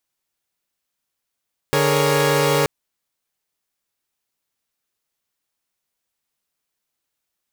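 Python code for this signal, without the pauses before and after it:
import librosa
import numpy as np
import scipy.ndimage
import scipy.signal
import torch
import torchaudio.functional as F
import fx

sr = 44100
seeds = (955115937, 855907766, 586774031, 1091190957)

y = fx.chord(sr, length_s=0.93, notes=(50, 68, 70, 73), wave='saw', level_db=-18.5)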